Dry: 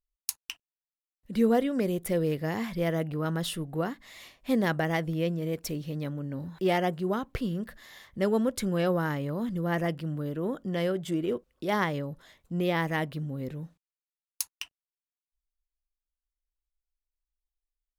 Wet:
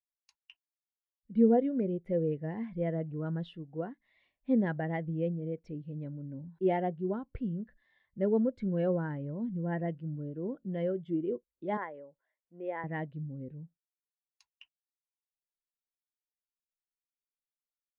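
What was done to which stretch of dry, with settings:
3.54–4.02 s: bass shelf 110 Hz -7.5 dB
11.77–12.84 s: three-band isolator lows -18 dB, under 370 Hz, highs -13 dB, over 2.5 kHz
whole clip: low-pass 3.1 kHz 12 dB/octave; band-stop 1.2 kHz, Q 7.9; spectral contrast expander 1.5:1

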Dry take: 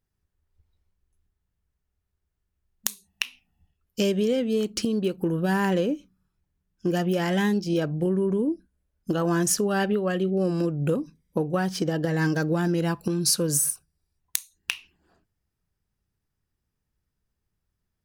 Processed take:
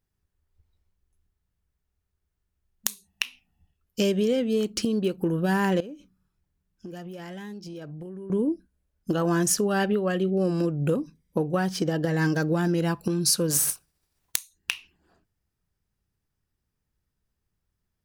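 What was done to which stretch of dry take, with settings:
5.80–8.30 s: compression, threshold -37 dBFS
13.50–14.36 s: spectral contrast reduction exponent 0.63

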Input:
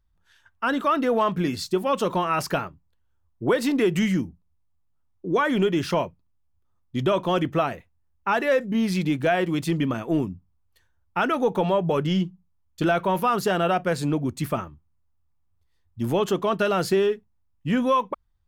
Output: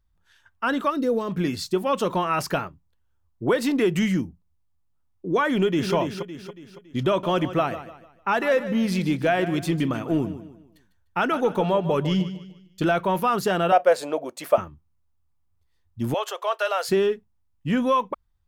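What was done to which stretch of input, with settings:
0.90–1.31 s: time-frequency box 600–3600 Hz -11 dB
5.50–5.94 s: echo throw 280 ms, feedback 45%, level -7 dB
7.08–12.85 s: feedback delay 150 ms, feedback 36%, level -13 dB
13.72–14.58 s: resonant high-pass 580 Hz, resonance Q 4
16.14–16.89 s: steep high-pass 500 Hz 48 dB/octave

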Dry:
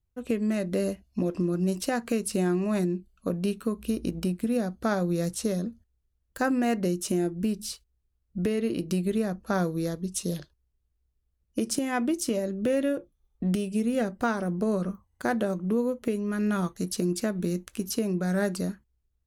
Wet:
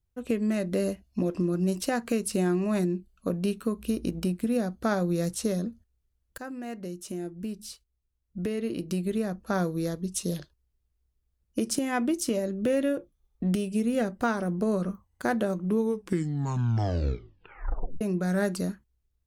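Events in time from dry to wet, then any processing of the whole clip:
6.38–10.02 s: fade in, from -14 dB
15.65 s: tape stop 2.36 s

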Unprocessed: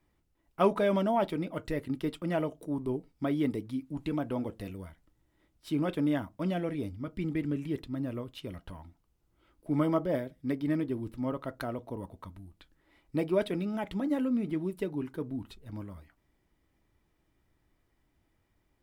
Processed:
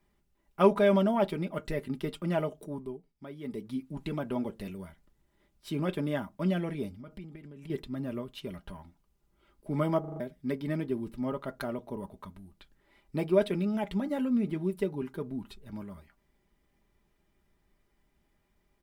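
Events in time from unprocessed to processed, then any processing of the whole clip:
2.63–3.73 s: dip -12.5 dB, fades 0.32 s
6.93–7.70 s: compression 20:1, threshold -41 dBFS
10.00 s: stutter in place 0.04 s, 5 plays
whole clip: comb 5 ms, depth 56%

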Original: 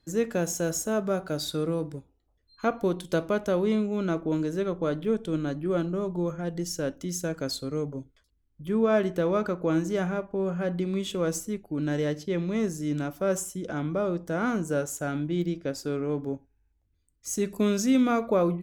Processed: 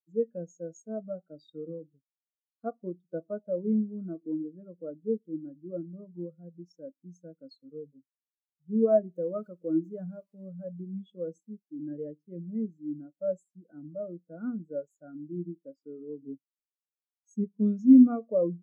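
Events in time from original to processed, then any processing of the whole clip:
9.14–10.84 s: zero-crossing glitches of -22 dBFS
16.20–17.44 s: bass shelf 190 Hz +8.5 dB
whole clip: high-pass 140 Hz 24 dB/octave; band-stop 390 Hz, Q 12; spectral contrast expander 2.5:1; trim +3.5 dB

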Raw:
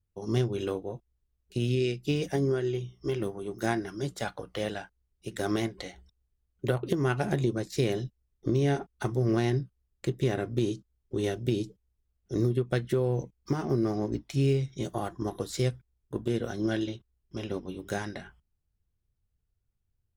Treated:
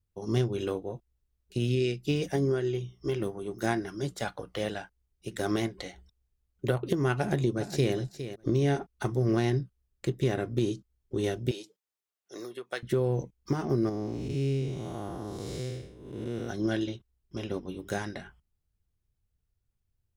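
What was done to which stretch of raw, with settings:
7.16–7.94 s: echo throw 410 ms, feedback 10%, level -11 dB
11.51–12.83 s: high-pass 710 Hz
13.89–16.49 s: spectral blur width 314 ms

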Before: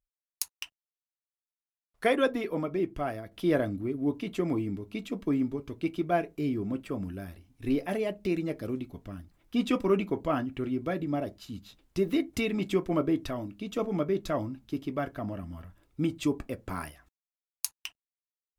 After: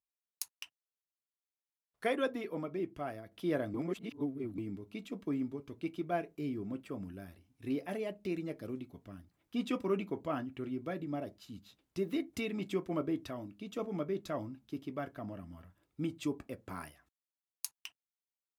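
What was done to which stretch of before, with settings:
3.74–4.58 s: reverse
whole clip: high-pass 86 Hz; trim -7.5 dB

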